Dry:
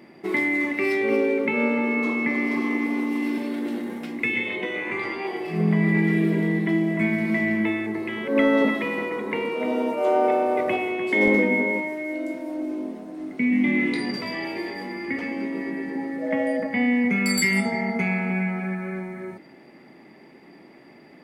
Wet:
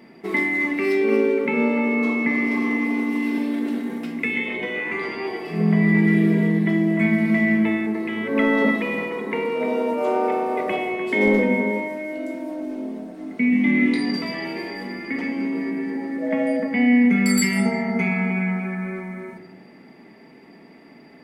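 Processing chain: simulated room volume 3600 m³, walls furnished, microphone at 1.6 m

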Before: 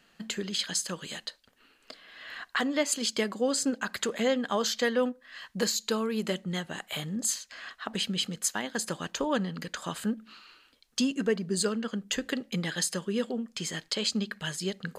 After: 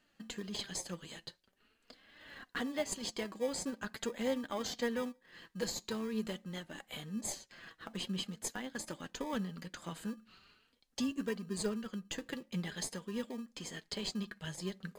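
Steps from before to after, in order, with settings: in parallel at -8 dB: sample-and-hold 31×; on the sum: flange 0.45 Hz, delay 3.2 ms, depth 3.1 ms, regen +52%; trim -7 dB

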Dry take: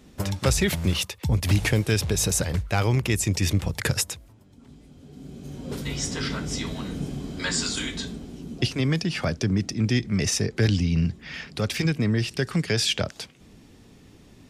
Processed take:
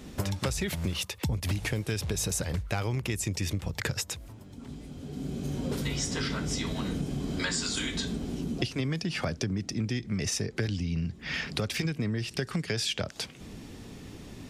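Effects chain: 3.70–4.11 s: peaking EQ 10 kHz -11.5 dB 0.34 oct; compression 6:1, threshold -35 dBFS, peak gain reduction 18 dB; trim +6.5 dB

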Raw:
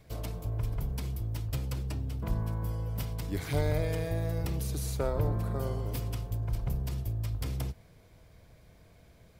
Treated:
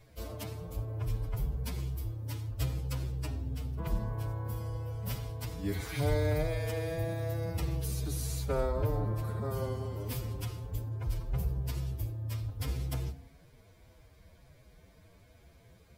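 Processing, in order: de-hum 53.66 Hz, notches 16; time stretch by phase-locked vocoder 1.7×; reverberation RT60 0.30 s, pre-delay 72 ms, DRR 19 dB

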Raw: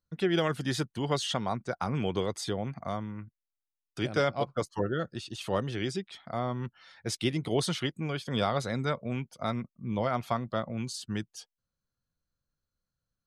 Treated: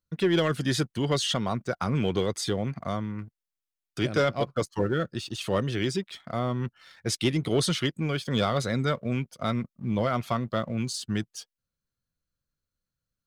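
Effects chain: peaking EQ 820 Hz -6.5 dB 0.56 oct; waveshaping leveller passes 1; trim +1.5 dB

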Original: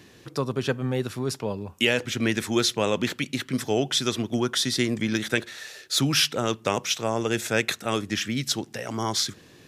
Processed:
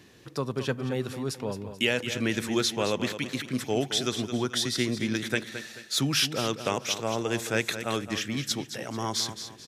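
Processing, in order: feedback delay 218 ms, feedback 35%, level -10.5 dB; trim -3.5 dB

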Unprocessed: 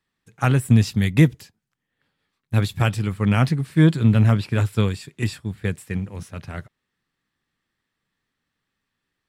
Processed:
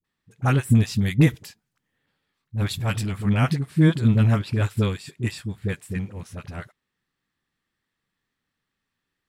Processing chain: 1.20–3.25 s: transient shaper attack -11 dB, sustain +5 dB; phase dispersion highs, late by 45 ms, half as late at 500 Hz; trim -2 dB

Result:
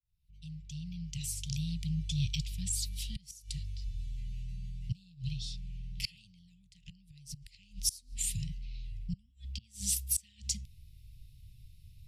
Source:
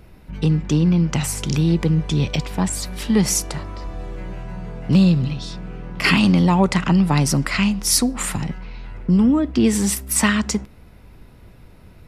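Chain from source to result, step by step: fade-in on the opening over 2.22 s; inverted gate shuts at -9 dBFS, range -26 dB; inverse Chebyshev band-stop 290–1400 Hz, stop band 50 dB; trim -7 dB

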